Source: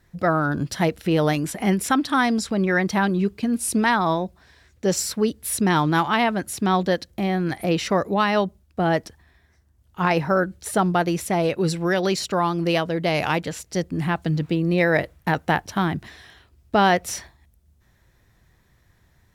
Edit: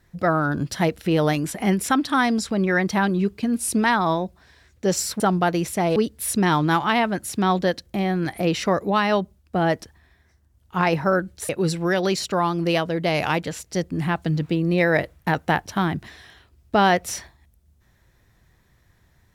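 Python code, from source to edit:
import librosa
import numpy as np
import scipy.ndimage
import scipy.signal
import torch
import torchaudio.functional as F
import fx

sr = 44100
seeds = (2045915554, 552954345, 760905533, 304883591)

y = fx.edit(x, sr, fx.move(start_s=10.73, length_s=0.76, to_s=5.2), tone=tone)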